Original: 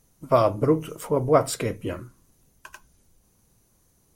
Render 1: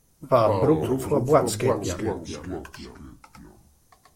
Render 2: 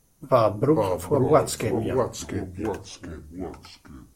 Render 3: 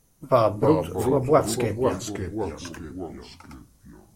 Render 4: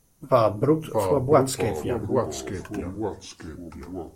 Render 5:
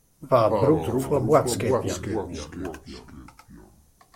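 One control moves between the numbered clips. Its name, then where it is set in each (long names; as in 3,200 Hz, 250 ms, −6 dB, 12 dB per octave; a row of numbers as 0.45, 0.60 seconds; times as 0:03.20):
delay with pitch and tempo change per echo, delay time: 87, 386, 249, 568, 130 milliseconds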